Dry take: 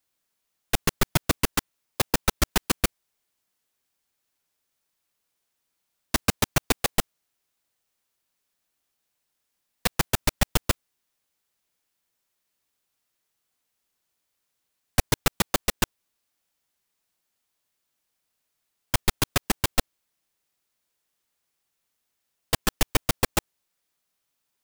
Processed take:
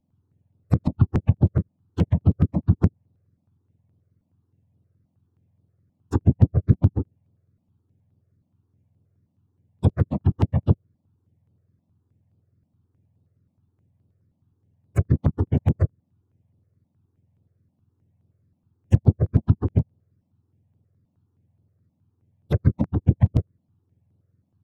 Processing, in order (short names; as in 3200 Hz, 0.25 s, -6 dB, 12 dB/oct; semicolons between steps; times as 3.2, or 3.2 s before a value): spectrum mirrored in octaves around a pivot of 1300 Hz; treble ducked by the level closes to 350 Hz, closed at -14 dBFS; step phaser 9.5 Hz 410–6600 Hz; gain +1.5 dB